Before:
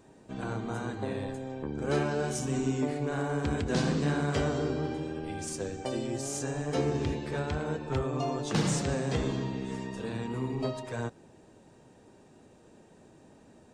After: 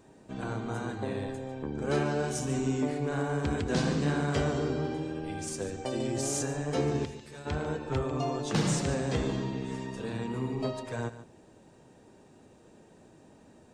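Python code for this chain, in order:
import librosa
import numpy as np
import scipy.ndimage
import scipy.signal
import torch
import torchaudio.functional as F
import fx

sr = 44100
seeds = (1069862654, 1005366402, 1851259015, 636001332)

p1 = fx.pre_emphasis(x, sr, coefficient=0.8, at=(7.04, 7.45), fade=0.02)
p2 = p1 + fx.echo_single(p1, sr, ms=146, db=-13.5, dry=0)
y = fx.env_flatten(p2, sr, amount_pct=100, at=(6.0, 6.46))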